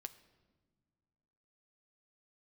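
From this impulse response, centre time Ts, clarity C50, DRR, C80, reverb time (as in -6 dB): 5 ms, 15.5 dB, 9.5 dB, 17.0 dB, no single decay rate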